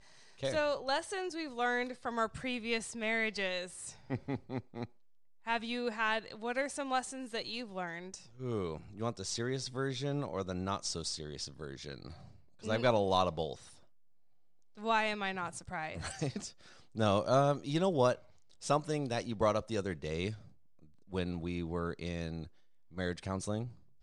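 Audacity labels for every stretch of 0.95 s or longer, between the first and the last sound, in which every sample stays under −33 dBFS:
13.530000	14.840000	silence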